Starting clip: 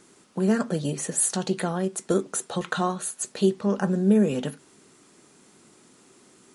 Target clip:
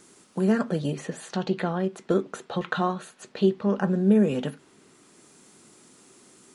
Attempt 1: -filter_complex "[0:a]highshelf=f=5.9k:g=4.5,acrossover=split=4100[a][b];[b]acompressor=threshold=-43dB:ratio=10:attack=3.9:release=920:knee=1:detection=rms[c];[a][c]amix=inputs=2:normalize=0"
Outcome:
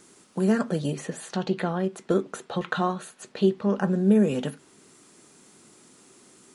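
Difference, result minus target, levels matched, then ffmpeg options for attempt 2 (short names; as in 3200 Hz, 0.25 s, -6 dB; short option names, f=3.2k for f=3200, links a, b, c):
compressor: peak gain reduction -6 dB
-filter_complex "[0:a]highshelf=f=5.9k:g=4.5,acrossover=split=4100[a][b];[b]acompressor=threshold=-49.5dB:ratio=10:attack=3.9:release=920:knee=1:detection=rms[c];[a][c]amix=inputs=2:normalize=0"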